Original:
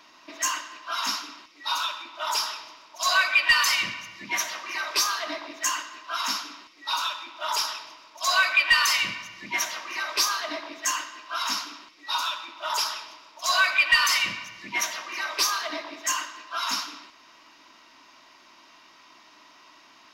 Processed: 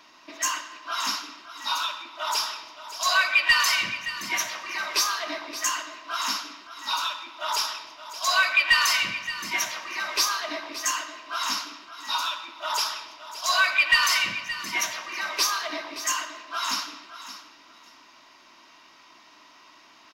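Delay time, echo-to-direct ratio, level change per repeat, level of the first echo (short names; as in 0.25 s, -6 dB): 0.572 s, -13.0 dB, -14.5 dB, -13.0 dB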